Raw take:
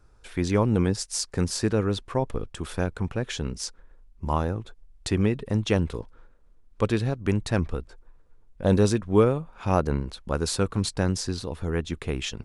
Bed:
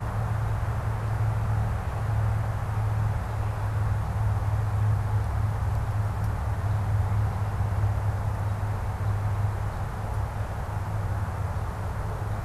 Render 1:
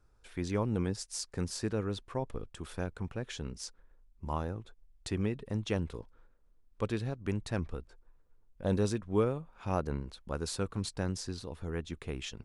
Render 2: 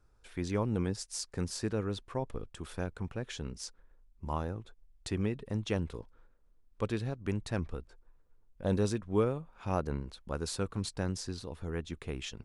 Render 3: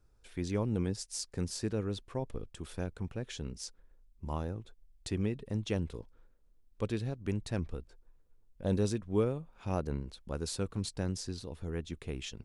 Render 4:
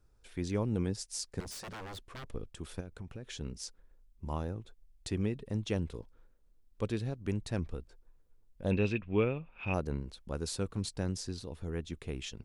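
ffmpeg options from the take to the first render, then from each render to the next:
-af "volume=0.335"
-af anull
-af "equalizer=f=1200:t=o:w=1.6:g=-5.5"
-filter_complex "[0:a]asettb=1/sr,asplit=3[s0][s1][s2];[s0]atrim=end=1.404[s3];[s1]atrim=start=1.4:end=2.3,asetpts=PTS-STARTPTS,afade=t=in:d=0.004:c=qsin,afade=t=out:st=0.896:d=0.004:c=qsin,aeval=exprs='0.0112*(abs(mod(val(0)/0.0112+3,4)-2)-1)':c=same[s4];[s2]atrim=start=2.296[s5];[s3][s4]acrossfade=d=0.004:c1=hsin:c2=qsin[s6];[s6][s5]acrossfade=d=0.004:c1=qsin:c2=hsin,asettb=1/sr,asplit=3[s7][s8][s9];[s7]atrim=end=2.804[s10];[s8]atrim=start=2.8:end=3.41,asetpts=PTS-STARTPTS,afade=t=in:d=0.004:c=qsin,afade=t=out:st=0.606:d=0.004:c=qsin,acompressor=threshold=0.0126:ratio=10:attack=3.2:release=140:knee=1:detection=peak[s11];[s9]atrim=start=3.406[s12];[s10][s11]acrossfade=d=0.004:c1=hsin:c2=qsin[s13];[s13][s12]acrossfade=d=0.004:c1=qsin:c2=hsin,asettb=1/sr,asplit=3[s14][s15][s16];[s14]atrim=end=8.714[s17];[s15]atrim=start=8.71:end=9.74,asetpts=PTS-STARTPTS,afade=t=in:d=0.004:c=qsin,afade=t=out:st=1.026:d=0.004:c=qsin,lowpass=f=2600:t=q:w=9[s18];[s16]atrim=start=9.736[s19];[s17][s18]acrossfade=d=0.004:c1=hsin:c2=qsin[s20];[s20][s19]acrossfade=d=0.004:c1=qsin:c2=hsin"

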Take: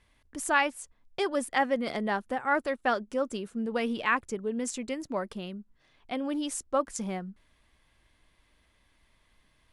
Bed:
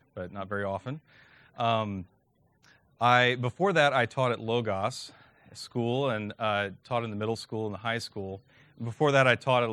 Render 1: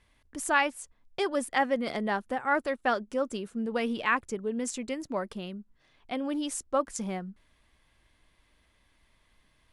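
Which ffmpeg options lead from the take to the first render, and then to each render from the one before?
-af anull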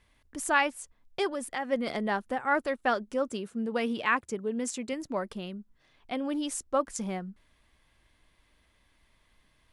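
-filter_complex "[0:a]asplit=3[s0][s1][s2];[s0]afade=t=out:st=1.31:d=0.02[s3];[s1]acompressor=threshold=0.0251:ratio=2.5:attack=3.2:release=140:knee=1:detection=peak,afade=t=in:st=1.31:d=0.02,afade=t=out:st=1.71:d=0.02[s4];[s2]afade=t=in:st=1.71:d=0.02[s5];[s3][s4][s5]amix=inputs=3:normalize=0,asettb=1/sr,asplit=3[s6][s7][s8];[s6]atrim=end=3.284[s9];[s7]atrim=start=3.28:end=4.93,asetpts=PTS-STARTPTS,afade=t=in:d=0.004:c=qsin,afade=t=out:st=1.646:d=0.004:c=qsin,highpass=71[s10];[s8]atrim=start=4.926[s11];[s9][s10]acrossfade=d=0.004:c1=hsin:c2=qsin[s12];[s12][s11]acrossfade=d=0.004:c1=qsin:c2=hsin"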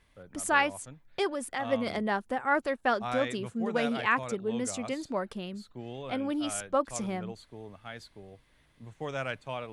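-filter_complex "[1:a]volume=0.237[s0];[0:a][s0]amix=inputs=2:normalize=0"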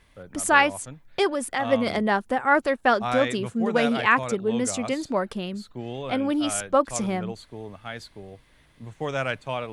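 -af "volume=2.24"

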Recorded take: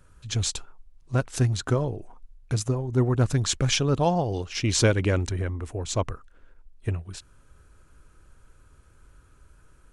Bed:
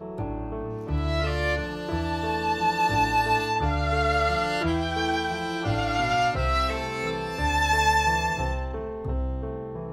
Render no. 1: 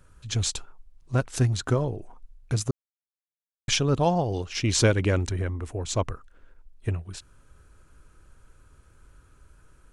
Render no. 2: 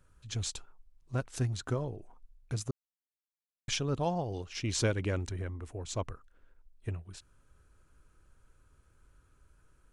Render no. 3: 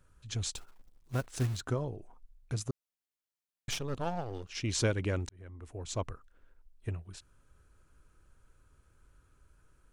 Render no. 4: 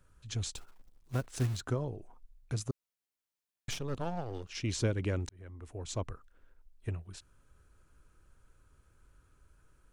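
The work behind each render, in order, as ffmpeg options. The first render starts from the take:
-filter_complex "[0:a]asplit=3[s0][s1][s2];[s0]atrim=end=2.71,asetpts=PTS-STARTPTS,afade=t=out:st=2.706:d=0.004:c=hsin[s3];[s1]atrim=start=2.71:end=3.68,asetpts=PTS-STARTPTS,volume=0[s4];[s2]atrim=start=3.68,asetpts=PTS-STARTPTS,afade=t=in:d=0.004:c=hsin[s5];[s3][s4][s5]concat=n=3:v=0:a=1"
-af "volume=0.355"
-filter_complex "[0:a]asettb=1/sr,asplit=3[s0][s1][s2];[s0]atrim=end=0.554[s3];[s1]atrim=start=0.55:end=1.61,asetpts=PTS-STARTPTS,afade=t=in:d=0.004:c=qsin,afade=t=out:st=1.056:d=0.004:c=qsin,acrusher=bits=4:mode=log:mix=0:aa=0.000001[s4];[s2]atrim=start=1.606[s5];[s3][s4]acrossfade=d=0.004:c1=hsin:c2=qsin[s6];[s6][s5]acrossfade=d=0.004:c1=qsin:c2=hsin,asettb=1/sr,asplit=3[s7][s8][s9];[s7]atrim=end=3.704[s10];[s8]atrim=start=3.7:end=4.49,asetpts=PTS-STARTPTS,afade=t=in:d=0.004:c=qsin,afade=t=out:st=0.786:d=0.004:c=qsin,aeval=exprs='if(lt(val(0),0),0.251*val(0),val(0))':c=same[s11];[s9]atrim=start=4.486[s12];[s10][s11]acrossfade=d=0.004:c1=hsin:c2=qsin[s13];[s13][s12]acrossfade=d=0.004:c1=qsin:c2=hsin,asplit=2[s14][s15];[s14]atrim=end=5.29,asetpts=PTS-STARTPTS,afade=t=out:st=5.286:d=0.004:c=hsin[s16];[s15]atrim=start=5.29,asetpts=PTS-STARTPTS,afade=t=in:d=0.59[s17];[s16][s17]concat=n=2:v=0:a=1"
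-filter_complex "[0:a]acrossover=split=470[s0][s1];[s1]acompressor=threshold=0.0126:ratio=3[s2];[s0][s2]amix=inputs=2:normalize=0"

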